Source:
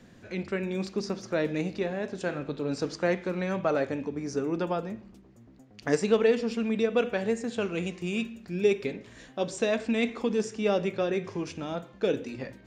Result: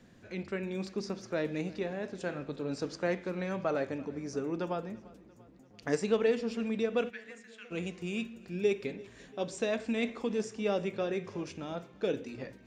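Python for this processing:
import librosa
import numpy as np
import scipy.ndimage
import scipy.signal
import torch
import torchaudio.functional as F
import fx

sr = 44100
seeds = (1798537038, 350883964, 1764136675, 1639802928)

p1 = fx.ladder_highpass(x, sr, hz=1600.0, resonance_pct=55, at=(7.09, 7.7), fade=0.02)
p2 = p1 + fx.echo_feedback(p1, sr, ms=342, feedback_pct=60, wet_db=-22.5, dry=0)
y = F.gain(torch.from_numpy(p2), -5.0).numpy()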